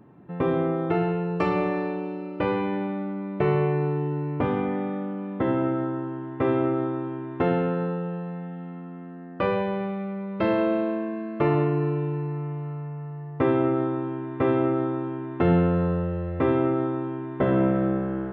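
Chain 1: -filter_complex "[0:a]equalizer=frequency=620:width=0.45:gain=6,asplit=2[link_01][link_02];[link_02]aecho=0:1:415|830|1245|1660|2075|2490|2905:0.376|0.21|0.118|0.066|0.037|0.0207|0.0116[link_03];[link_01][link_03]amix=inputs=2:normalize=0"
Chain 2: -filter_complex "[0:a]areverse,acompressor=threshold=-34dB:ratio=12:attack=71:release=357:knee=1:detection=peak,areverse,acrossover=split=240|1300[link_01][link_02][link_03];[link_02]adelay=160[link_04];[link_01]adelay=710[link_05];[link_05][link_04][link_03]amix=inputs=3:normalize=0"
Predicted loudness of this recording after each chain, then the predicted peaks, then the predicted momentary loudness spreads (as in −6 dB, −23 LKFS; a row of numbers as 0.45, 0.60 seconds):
−21.5, −38.0 LKFS; −5.0, −23.5 dBFS; 10, 4 LU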